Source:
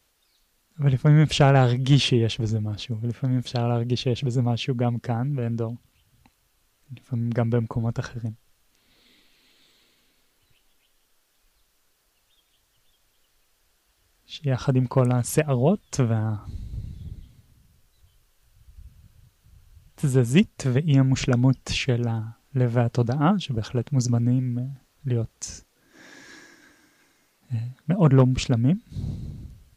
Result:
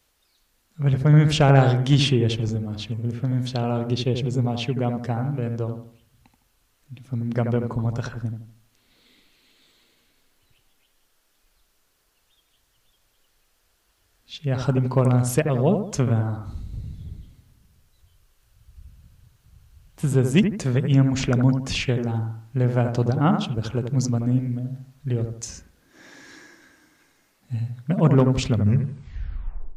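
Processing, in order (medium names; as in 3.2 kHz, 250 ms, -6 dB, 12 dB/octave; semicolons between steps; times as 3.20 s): tape stop on the ending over 1.33 s; bucket-brigade echo 80 ms, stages 1024, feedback 36%, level -6.5 dB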